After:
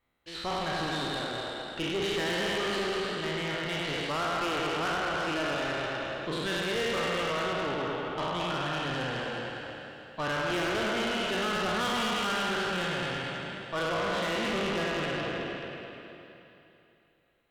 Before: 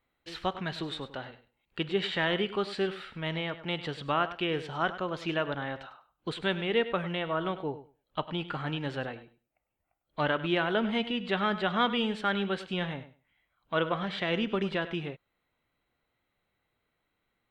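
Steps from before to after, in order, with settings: spectral sustain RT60 2.88 s; two-band feedback delay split 360 Hz, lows 138 ms, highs 213 ms, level -4.5 dB; valve stage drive 27 dB, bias 0.5

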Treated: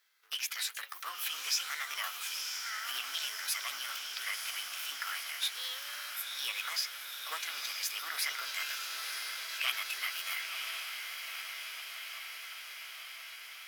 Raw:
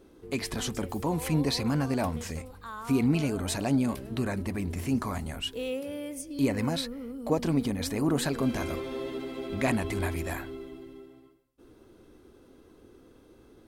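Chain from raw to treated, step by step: companding laws mixed up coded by A; high-pass 1.2 kHz 24 dB/octave; on a send: echo that smears into a reverb 980 ms, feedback 73%, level -6.5 dB; on the sum: formant shift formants +4 st; in parallel at -2 dB: peak limiter -30.5 dBFS, peak gain reduction 10.5 dB; on the sum: peaking EQ 8.4 kHz -5.5 dB 0.5 oct

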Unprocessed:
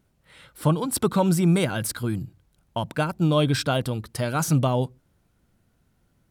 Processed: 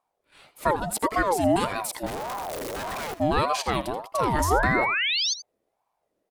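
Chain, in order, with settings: 2.06–3.14 s: one-bit comparator; gate -52 dBFS, range -9 dB; 4.14–5.34 s: painted sound rise 240–5600 Hz -22 dBFS; on a send: delay 82 ms -14 dB; on the sum: ring modulator with a swept carrier 670 Hz, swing 35%, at 1.7 Hz

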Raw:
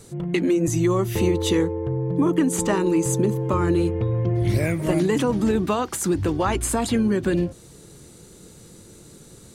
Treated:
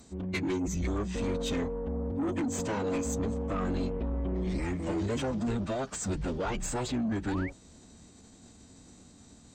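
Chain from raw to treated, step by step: formant-preserving pitch shift -11 st; saturation -20 dBFS, distortion -12 dB; painted sound rise, 7.28–7.50 s, 700–2400 Hz -36 dBFS; trim -6 dB

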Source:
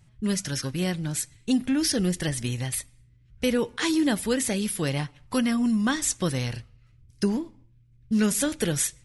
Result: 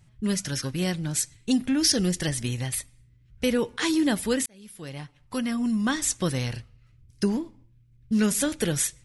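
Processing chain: 0.74–2.37 s: dynamic bell 5.8 kHz, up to +6 dB, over -41 dBFS, Q 1.1; 4.46–6.02 s: fade in

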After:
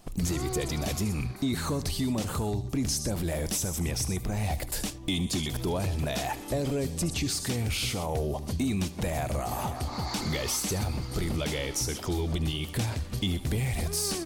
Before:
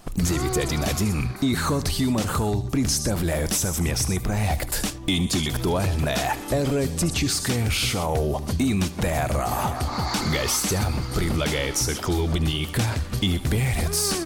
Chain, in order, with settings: peaking EQ 1.4 kHz -5 dB 0.89 oct; trim -6 dB

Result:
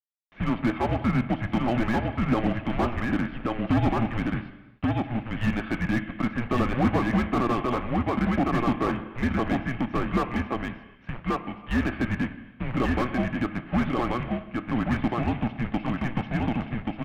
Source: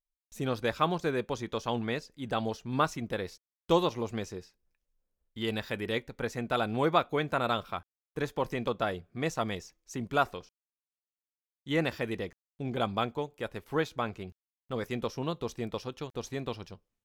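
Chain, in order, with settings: high-pass 43 Hz 12 dB/octave; bass shelf 76 Hz +10 dB; comb 2.1 ms, depth 43%; compression 1.5:1, threshold -31 dBFS, peak gain reduction 5.5 dB; hard clipper -25 dBFS, distortion -15 dB; companded quantiser 4-bit; delay 1132 ms -3 dB; on a send at -11 dB: reverberation, pre-delay 3 ms; on the sum: mistuned SSB -240 Hz 190–2900 Hz; slew-rate limiter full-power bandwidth 26 Hz; trim +8 dB

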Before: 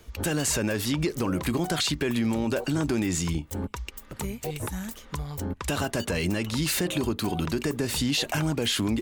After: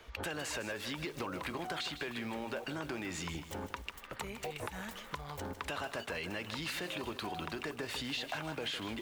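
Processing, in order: three-band isolator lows -13 dB, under 490 Hz, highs -14 dB, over 4 kHz; compression 4:1, threshold -41 dBFS, peak gain reduction 12.5 dB; bit-crushed delay 155 ms, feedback 55%, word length 9-bit, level -10 dB; trim +3 dB

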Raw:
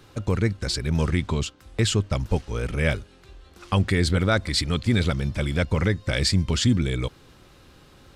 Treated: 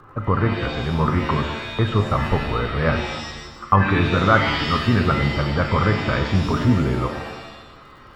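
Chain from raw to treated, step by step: resonant low-pass 1.2 kHz, resonance Q 5.2; crackle 56 per s -48 dBFS; pitch-shifted reverb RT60 1 s, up +7 st, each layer -2 dB, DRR 5.5 dB; trim +1.5 dB

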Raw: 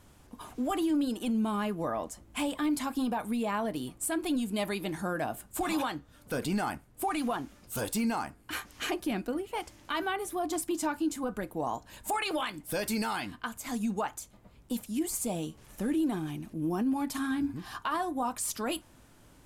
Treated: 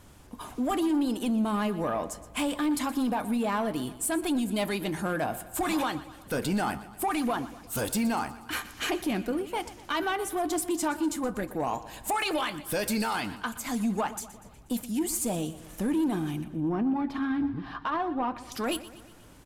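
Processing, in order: 16.44–18.52 s: distance through air 330 m; saturation -25.5 dBFS, distortion -19 dB; feedback delay 121 ms, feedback 54%, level -16 dB; trim +4.5 dB

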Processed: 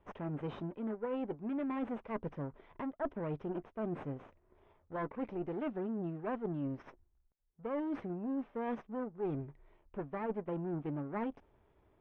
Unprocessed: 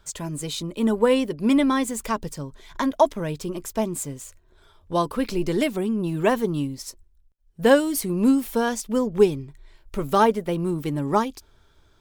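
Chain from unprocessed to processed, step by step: comb filter that takes the minimum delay 0.33 ms; Bessel low-pass 1 kHz, order 4; tilt EQ +3 dB/octave; reverse; compression 16:1, threshold -35 dBFS, peak gain reduction 20.5 dB; reverse; trim +1 dB

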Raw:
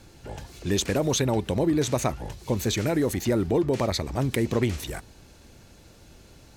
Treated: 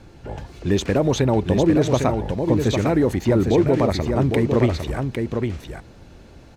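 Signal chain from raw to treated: low-pass 1.8 kHz 6 dB/octave; delay 804 ms -5.5 dB; trim +6 dB

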